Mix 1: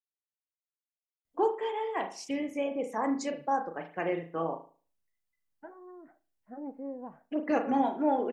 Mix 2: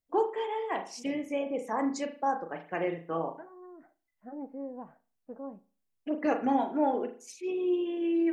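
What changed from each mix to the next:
first voice: entry -1.25 s; second voice: entry -2.25 s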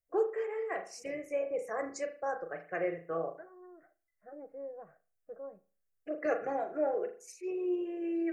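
master: add static phaser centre 920 Hz, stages 6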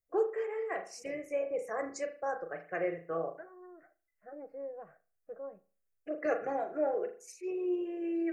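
second voice: remove distance through air 450 m

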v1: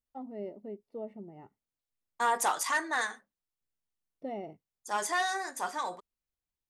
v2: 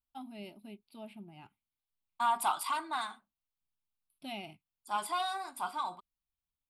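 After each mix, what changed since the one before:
first voice: remove Savitzky-Golay filter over 65 samples; master: add static phaser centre 1.8 kHz, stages 6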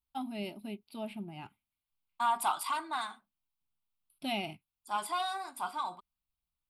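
first voice +7.5 dB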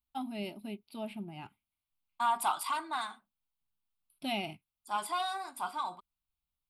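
no change

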